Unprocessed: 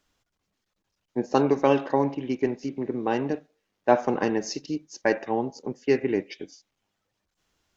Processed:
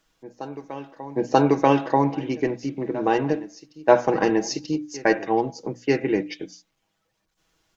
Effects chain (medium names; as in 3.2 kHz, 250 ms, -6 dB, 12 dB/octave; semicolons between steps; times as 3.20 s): hum notches 60/120/180/240/300 Hz; comb 6.2 ms, depth 48%; reverse echo 936 ms -17.5 dB; trim +3.5 dB